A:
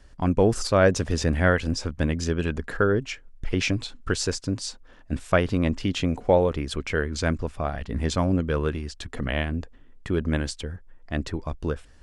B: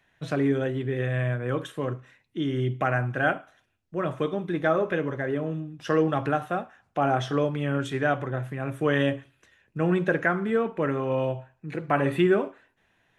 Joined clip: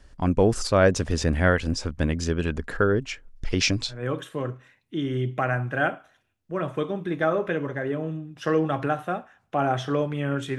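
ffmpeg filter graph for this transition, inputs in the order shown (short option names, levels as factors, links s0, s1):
-filter_complex "[0:a]asettb=1/sr,asplit=3[s0][s1][s2];[s0]atrim=end=3.364[s3];[s1]atrim=start=3.36:end=4.04,asetpts=PTS-STARTPTS,afade=t=in:d=0.004:c=qsin,afade=t=out:st=0.676:d=0.004:c=qsin,equalizer=f=5200:w=1.4:g=9[s4];[s2]atrim=start=4.036[s5];[s3][s4]acrossfade=d=0.004:c1=hsin:c2=qsin[s6];[s6][s5]acrossfade=d=0.004:c1=qsin:c2=hsin,apad=whole_dur=10.58,atrim=end=10.58,atrim=end=4.04,asetpts=PTS-STARTPTS[s7];[1:a]atrim=start=1.31:end=8.01,asetpts=PTS-STARTPTS[s8];[s7][s8]acrossfade=d=0.16:c1=tri:c2=tri"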